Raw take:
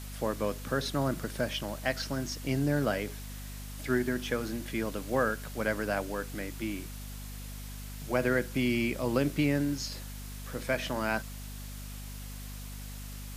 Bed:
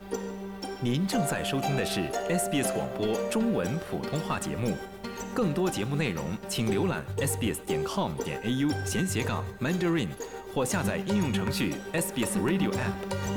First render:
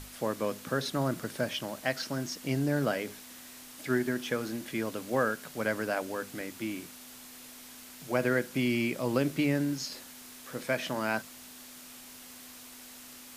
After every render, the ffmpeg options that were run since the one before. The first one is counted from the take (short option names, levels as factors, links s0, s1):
-af "bandreject=f=50:t=h:w=6,bandreject=f=100:t=h:w=6,bandreject=f=150:t=h:w=6,bandreject=f=200:t=h:w=6"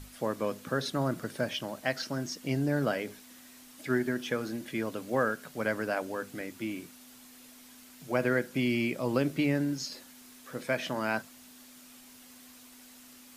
-af "afftdn=nr=6:nf=-49"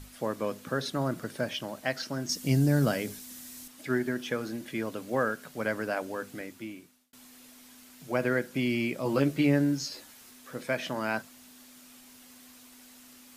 -filter_complex "[0:a]asettb=1/sr,asplit=3[s0][s1][s2];[s0]atrim=end=2.294[s3];[s1]atrim=start=2.29:end=3.68,asetpts=PTS-STARTPTS,afade=t=in:d=0.004:c=qsin,afade=t=out:st=1.386:d=0.004:c=qsin,bass=f=250:g=9,treble=f=4000:g=10[s4];[s2]atrim=start=3.676[s5];[s3][s4]acrossfade=d=0.004:c1=hsin:c2=qsin[s6];[s6][s5]acrossfade=d=0.004:c1=qsin:c2=hsin,asettb=1/sr,asplit=3[s7][s8][s9];[s7]atrim=end=9.044[s10];[s8]atrim=start=9.04:end=10.31,asetpts=PTS-STARTPTS,afade=t=in:d=0.004:c=qsin,afade=t=out:st=1.266:d=0.004:c=qsin,asplit=2[s11][s12];[s12]adelay=14,volume=0.668[s13];[s11][s13]amix=inputs=2:normalize=0,atrim=end_sample=56007[s14];[s9]atrim=start=10.306[s15];[s10][s14]acrossfade=d=0.004:c1=hsin:c2=qsin[s16];[s16][s15]acrossfade=d=0.004:c1=qsin:c2=hsin,asplit=2[s17][s18];[s17]atrim=end=7.13,asetpts=PTS-STARTPTS,afade=t=out:st=6.32:d=0.81[s19];[s18]atrim=start=7.13,asetpts=PTS-STARTPTS,afade=t=in:d=0.004:c=hsin[s20];[s19][s20]concat=n=2:v=0:a=1"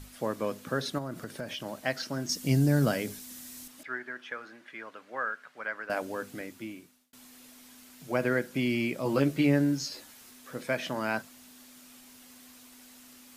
-filter_complex "[0:a]asettb=1/sr,asplit=3[s0][s1][s2];[s0]atrim=end=0.984[s3];[s1]atrim=start=0.98:end=1.66,asetpts=PTS-STARTPTS,afade=t=in:d=0.004:c=qsin,afade=t=out:st=0.676:d=0.004:c=qsin,acompressor=threshold=0.02:ratio=3:attack=3.2:release=140:knee=1:detection=peak[s4];[s2]atrim=start=1.656[s5];[s3][s4]acrossfade=d=0.004:c1=hsin:c2=qsin[s6];[s6][s5]acrossfade=d=0.004:c1=qsin:c2=hsin,asettb=1/sr,asplit=3[s7][s8][s9];[s7]atrim=end=3.834[s10];[s8]atrim=start=3.83:end=5.9,asetpts=PTS-STARTPTS,afade=t=in:d=0.004:c=qsin,afade=t=out:st=2.066:d=0.004:c=qsin,bandpass=f=1500:t=q:w=1.4[s11];[s9]atrim=start=5.896[s12];[s10][s11]acrossfade=d=0.004:c1=hsin:c2=qsin[s13];[s13][s12]acrossfade=d=0.004:c1=qsin:c2=hsin"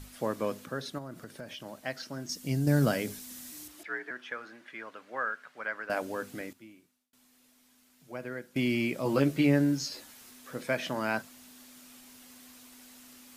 -filter_complex "[0:a]asettb=1/sr,asplit=3[s0][s1][s2];[s0]atrim=end=3.524[s3];[s1]atrim=start=3.52:end=4.11,asetpts=PTS-STARTPTS,afade=t=in:d=0.004:c=qsin,afade=t=out:st=0.586:d=0.004:c=qsin,afreqshift=50[s4];[s2]atrim=start=4.106[s5];[s3][s4]acrossfade=d=0.004:c1=hsin:c2=qsin[s6];[s6][s5]acrossfade=d=0.004:c1=qsin:c2=hsin,asplit=5[s7][s8][s9][s10][s11];[s7]atrim=end=0.662[s12];[s8]atrim=start=0.658:end=2.672,asetpts=PTS-STARTPTS,volume=0.531[s13];[s9]atrim=start=2.668:end=6.532[s14];[s10]atrim=start=6.528:end=8.562,asetpts=PTS-STARTPTS,volume=0.266[s15];[s11]atrim=start=8.558[s16];[s12][s13]acrossfade=d=0.004:c1=hsin:c2=hsin[s17];[s17][s14]acrossfade=d=0.004:c1=hsin:c2=hsin[s18];[s18][s15]acrossfade=d=0.004:c1=hsin:c2=hsin[s19];[s19][s16]acrossfade=d=0.004:c1=hsin:c2=hsin"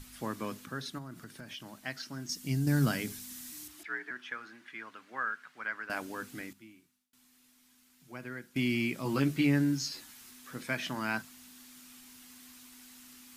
-af "equalizer=f=550:t=o:w=0.87:g=-12,bandreject=f=50:t=h:w=6,bandreject=f=100:t=h:w=6,bandreject=f=150:t=h:w=6,bandreject=f=200:t=h:w=6"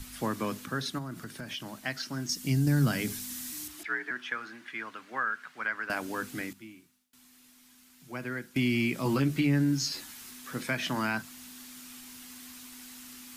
-filter_complex "[0:a]acrossover=split=190[s0][s1];[s1]acompressor=threshold=0.0251:ratio=2.5[s2];[s0][s2]amix=inputs=2:normalize=0,asplit=2[s3][s4];[s4]alimiter=level_in=1.33:limit=0.0631:level=0:latency=1:release=312,volume=0.75,volume=1.06[s5];[s3][s5]amix=inputs=2:normalize=0"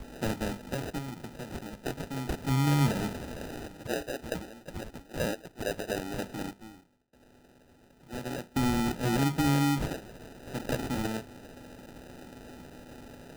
-af "acrusher=samples=40:mix=1:aa=0.000001"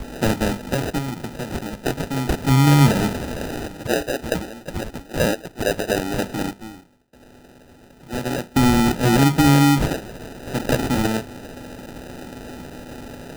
-af "volume=3.76"